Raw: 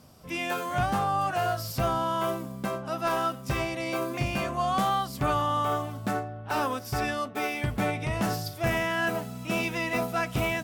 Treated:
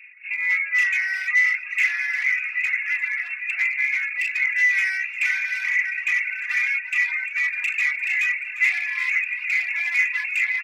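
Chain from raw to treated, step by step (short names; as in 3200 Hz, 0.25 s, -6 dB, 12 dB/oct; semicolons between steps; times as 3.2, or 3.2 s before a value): minimum comb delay 4.1 ms; inverted band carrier 2700 Hz; 2.82–3.59 compressor 12:1, threshold -32 dBFS, peak gain reduction 7.5 dB; on a send: diffused feedback echo 1.05 s, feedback 47%, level -6.5 dB; on the sum: hard clip -27.5 dBFS, distortion -11 dB; resonant high-pass 2100 Hz, resonance Q 7.2; echo 0.35 s -12 dB; reverb removal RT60 1.4 s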